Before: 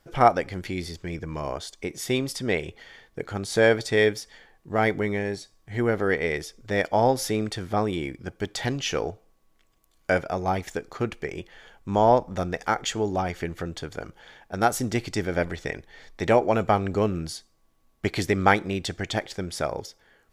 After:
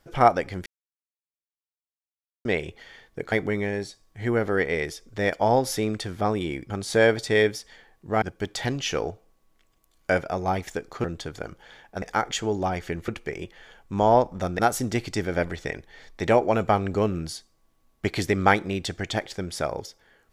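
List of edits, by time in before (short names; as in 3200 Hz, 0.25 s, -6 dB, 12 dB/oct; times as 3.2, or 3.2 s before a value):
0.66–2.45 mute
3.32–4.84 move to 8.22
11.04–12.55 swap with 13.61–14.59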